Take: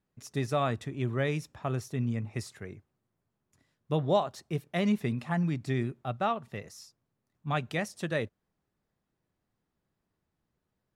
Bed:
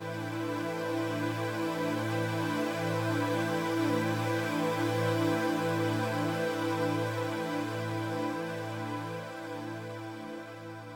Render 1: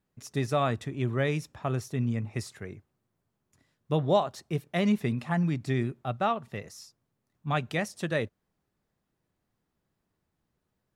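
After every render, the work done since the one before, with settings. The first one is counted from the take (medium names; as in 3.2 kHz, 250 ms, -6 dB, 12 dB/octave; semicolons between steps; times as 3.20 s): trim +2 dB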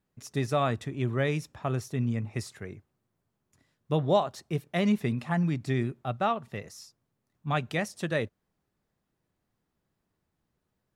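no audible change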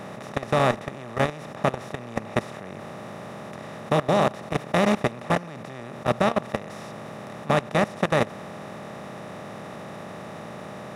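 spectral levelling over time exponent 0.2; level held to a coarse grid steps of 19 dB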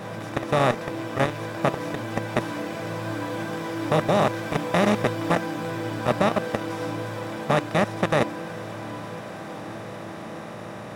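add bed -0.5 dB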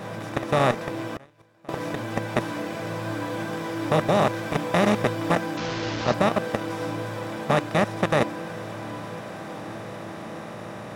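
1.16–1.69 s: inverted gate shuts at -24 dBFS, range -28 dB; 5.57–6.14 s: one-bit delta coder 32 kbps, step -24.5 dBFS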